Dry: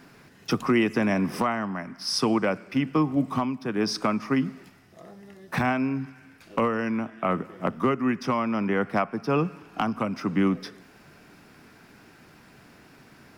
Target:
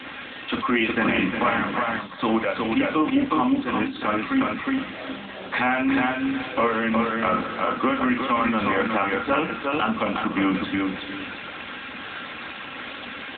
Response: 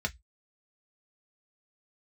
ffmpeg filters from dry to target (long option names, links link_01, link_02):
-filter_complex "[0:a]aeval=exprs='val(0)+0.5*0.0178*sgn(val(0))':channel_layout=same,highpass=frequency=91:poles=1,aemphasis=mode=production:type=riaa,aecho=1:1:3.7:0.61,aecho=1:1:362|724|1086|1448:0.631|0.164|0.0427|0.0111,asplit=2[link_01][link_02];[1:a]atrim=start_sample=2205,lowshelf=frequency=130:gain=-8,adelay=42[link_03];[link_02][link_03]afir=irnorm=-1:irlink=0,volume=-11dB[link_04];[link_01][link_04]amix=inputs=2:normalize=0,alimiter=level_in=11.5dB:limit=-1dB:release=50:level=0:latency=1,volume=-7dB" -ar 8000 -c:a libopencore_amrnb -b:a 7950